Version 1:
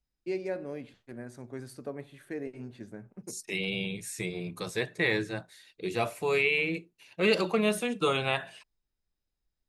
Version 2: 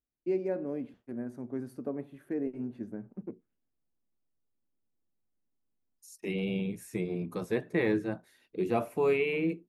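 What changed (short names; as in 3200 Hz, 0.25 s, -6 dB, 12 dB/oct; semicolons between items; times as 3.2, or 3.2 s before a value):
second voice: entry +2.75 s; master: add graphic EQ 125/250/2000/4000/8000 Hz -3/+8/-5/-11/-11 dB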